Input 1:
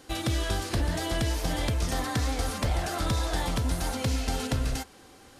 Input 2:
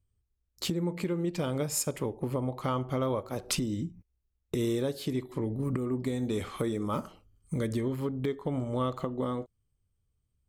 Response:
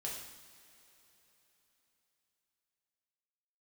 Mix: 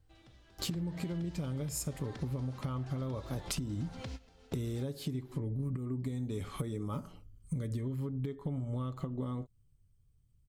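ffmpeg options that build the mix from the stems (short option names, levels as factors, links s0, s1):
-filter_complex "[0:a]lowpass=5300,acompressor=threshold=0.0355:ratio=6,acrusher=bits=10:mix=0:aa=0.000001,volume=0.335,asplit=2[s0][s1];[s1]volume=0.0944[s2];[1:a]bass=f=250:g=11,treble=f=4000:g=3,aecho=1:1:7.1:0.32,volume=0.794,asplit=2[s3][s4];[s4]apad=whole_len=237951[s5];[s0][s5]sidechaingate=range=0.0562:threshold=0.00112:ratio=16:detection=peak[s6];[2:a]atrim=start_sample=2205[s7];[s2][s7]afir=irnorm=-1:irlink=0[s8];[s6][s3][s8]amix=inputs=3:normalize=0,acompressor=threshold=0.02:ratio=6"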